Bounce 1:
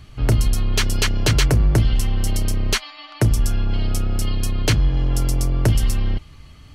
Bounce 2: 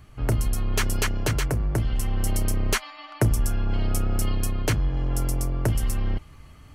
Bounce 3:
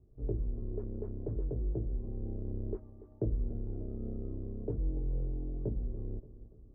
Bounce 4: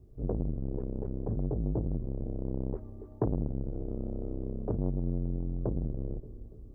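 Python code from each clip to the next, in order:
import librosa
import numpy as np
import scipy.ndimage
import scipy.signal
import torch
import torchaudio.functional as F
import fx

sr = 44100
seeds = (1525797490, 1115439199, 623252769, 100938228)

y1 = fx.peak_eq(x, sr, hz=4000.0, db=-11.0, octaves=1.6)
y1 = fx.rider(y1, sr, range_db=10, speed_s=0.5)
y1 = fx.low_shelf(y1, sr, hz=440.0, db=-6.0)
y2 = fx.ladder_lowpass(y1, sr, hz=500.0, resonance_pct=50)
y2 = fx.chorus_voices(y2, sr, voices=6, hz=0.45, base_ms=19, depth_ms=3.2, mix_pct=40)
y2 = fx.echo_feedback(y2, sr, ms=288, feedback_pct=51, wet_db=-15.5)
y2 = y2 * librosa.db_to_amplitude(-1.5)
y3 = fx.transformer_sat(y2, sr, knee_hz=350.0)
y3 = y3 * librosa.db_to_amplitude(7.5)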